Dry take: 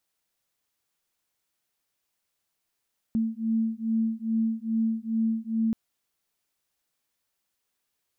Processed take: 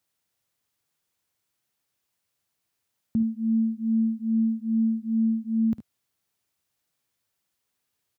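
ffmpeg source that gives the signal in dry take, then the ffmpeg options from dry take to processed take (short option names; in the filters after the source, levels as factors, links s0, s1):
-f lavfi -i "aevalsrc='0.0447*(sin(2*PI*223*t)+sin(2*PI*225.4*t))':d=2.58:s=44100"
-af "highpass=64,equalizer=f=96:t=o:w=1.7:g=7.5,aecho=1:1:53|73:0.224|0.2"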